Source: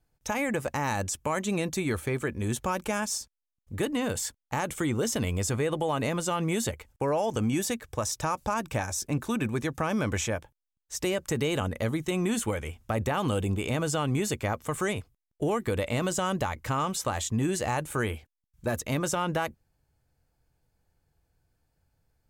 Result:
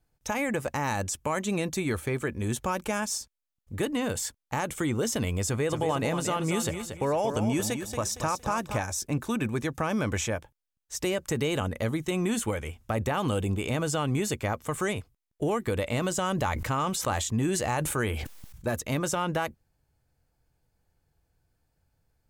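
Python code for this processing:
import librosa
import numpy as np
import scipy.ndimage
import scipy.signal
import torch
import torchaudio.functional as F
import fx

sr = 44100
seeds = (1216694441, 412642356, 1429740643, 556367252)

y = fx.echo_feedback(x, sr, ms=231, feedback_pct=30, wet_db=-8, at=(5.69, 8.77), fade=0.02)
y = fx.sustainer(y, sr, db_per_s=37.0, at=(16.28, 18.66))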